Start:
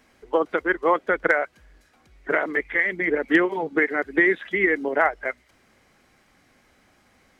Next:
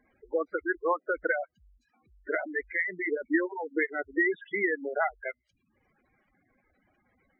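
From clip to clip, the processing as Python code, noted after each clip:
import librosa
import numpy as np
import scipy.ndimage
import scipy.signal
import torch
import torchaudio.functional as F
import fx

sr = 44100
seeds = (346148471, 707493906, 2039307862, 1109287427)

y = fx.dereverb_blind(x, sr, rt60_s=0.72)
y = fx.spec_gate(y, sr, threshold_db=-10, keep='strong')
y = y * librosa.db_to_amplitude(-6.0)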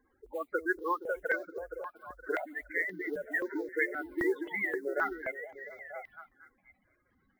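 y = fx.echo_stepped(x, sr, ms=234, hz=210.0, octaves=0.7, feedback_pct=70, wet_db=-3.5)
y = fx.mod_noise(y, sr, seeds[0], snr_db=32)
y = fx.phaser_held(y, sr, hz=3.8, low_hz=650.0, high_hz=2900.0)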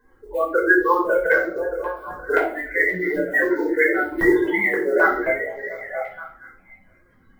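y = fx.room_shoebox(x, sr, seeds[1], volume_m3=470.0, walls='furnished', distance_m=5.0)
y = y * librosa.db_to_amplitude(6.0)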